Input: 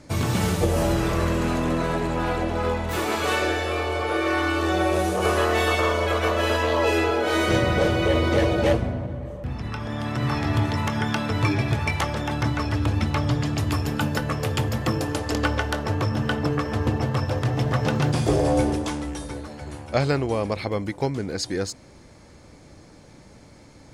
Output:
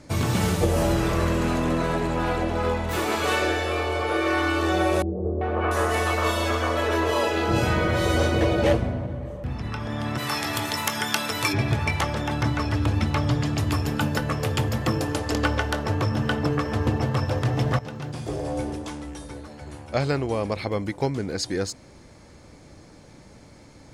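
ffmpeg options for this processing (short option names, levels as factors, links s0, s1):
-filter_complex "[0:a]asettb=1/sr,asplit=3[s0][s1][s2];[s0]atrim=end=5.024[s3];[s1]atrim=start=5.02:end=8.41,asetpts=PTS-STARTPTS,afade=t=in:d=0.004:c=qsin,afade=t=out:st=3.386:d=0.004:c=qsin,acrossover=split=470|2500[s4][s5][s6];[s5]adelay=390[s7];[s6]adelay=690[s8];[s4][s7][s8]amix=inputs=3:normalize=0,atrim=end_sample=149499[s9];[s2]atrim=start=8.406[s10];[s3][s9]acrossfade=d=0.004:c1=hsin:c2=qsin[s11];[s11][s10]acrossfade=d=0.004:c1=qsin:c2=hsin,asplit=3[s12][s13][s14];[s12]afade=t=out:st=10.17:d=0.02[s15];[s13]aemphasis=mode=production:type=riaa,afade=t=in:st=10.17:d=0.02,afade=t=out:st=11.52:d=0.02[s16];[s14]afade=t=in:st=11.52:d=0.02[s17];[s15][s16][s17]amix=inputs=3:normalize=0,asplit=2[s18][s19];[s18]atrim=end=17.79,asetpts=PTS-STARTPTS,afade=t=out:st=17.786:d=0.004:c=hsin:silence=0.199526[s20];[s19]atrim=start=17.79,asetpts=PTS-STARTPTS,afade=t=in:d=3.12:silence=0.199526[s21];[s20][s21]concat=n=2:v=0:a=1"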